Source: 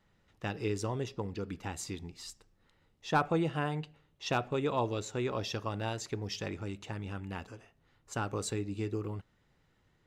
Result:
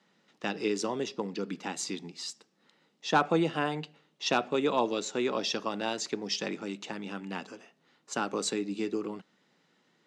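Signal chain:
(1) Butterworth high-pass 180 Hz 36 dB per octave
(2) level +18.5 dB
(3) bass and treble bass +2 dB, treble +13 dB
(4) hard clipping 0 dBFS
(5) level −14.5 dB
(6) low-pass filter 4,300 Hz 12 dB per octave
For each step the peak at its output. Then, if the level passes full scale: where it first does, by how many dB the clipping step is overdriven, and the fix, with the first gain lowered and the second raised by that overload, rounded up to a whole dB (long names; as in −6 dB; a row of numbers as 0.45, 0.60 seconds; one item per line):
−15.5, +3.0, +5.0, 0.0, −14.5, −14.0 dBFS
step 2, 5.0 dB
step 2 +13.5 dB, step 5 −9.5 dB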